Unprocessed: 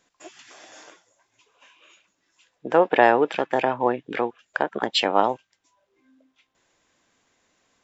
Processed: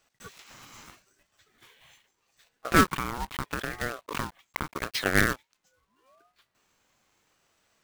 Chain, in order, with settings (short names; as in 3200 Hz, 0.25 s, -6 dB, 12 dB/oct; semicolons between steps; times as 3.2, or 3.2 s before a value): block floating point 3-bit; 2.85–5.06 compressor 16:1, threshold -24 dBFS, peak gain reduction 15.5 dB; ring modulator with a swept carrier 730 Hz, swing 35%, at 0.79 Hz